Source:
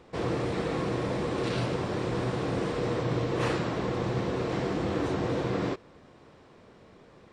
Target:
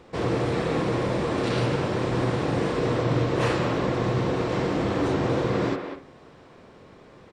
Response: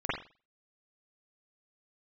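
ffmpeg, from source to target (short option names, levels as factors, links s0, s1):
-filter_complex "[0:a]asplit=2[s0][s1];[s1]adelay=200,highpass=300,lowpass=3400,asoftclip=type=hard:threshold=0.0562,volume=0.501[s2];[s0][s2]amix=inputs=2:normalize=0,asplit=2[s3][s4];[1:a]atrim=start_sample=2205[s5];[s4][s5]afir=irnorm=-1:irlink=0,volume=0.141[s6];[s3][s6]amix=inputs=2:normalize=0,volume=1.41"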